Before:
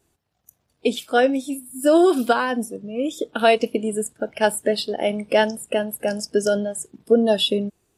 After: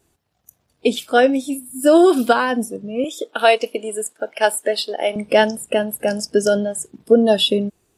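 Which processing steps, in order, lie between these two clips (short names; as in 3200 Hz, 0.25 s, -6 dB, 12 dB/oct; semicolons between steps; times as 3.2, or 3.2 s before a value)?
3.04–5.16 HPF 470 Hz 12 dB/oct; gain +3.5 dB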